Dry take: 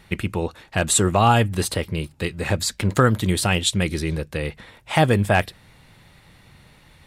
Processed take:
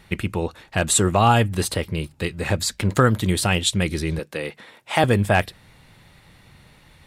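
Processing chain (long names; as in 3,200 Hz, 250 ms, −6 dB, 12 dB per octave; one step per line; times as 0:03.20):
0:04.19–0:05.04: high-pass filter 230 Hz 12 dB per octave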